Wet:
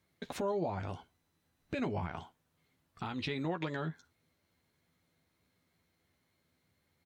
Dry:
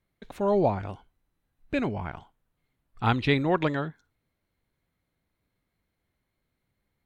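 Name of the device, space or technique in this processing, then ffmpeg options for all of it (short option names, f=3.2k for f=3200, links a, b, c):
broadcast voice chain: -filter_complex "[0:a]highpass=87,deesser=0.65,acompressor=threshold=-33dB:ratio=5,equalizer=f=5.6k:t=o:w=1.2:g=5.5,alimiter=level_in=5dB:limit=-24dB:level=0:latency=1:release=74,volume=-5dB,asplit=2[a][b];[b]adelay=12,volume=-7dB[c];[a][c]amix=inputs=2:normalize=0,volume=2.5dB"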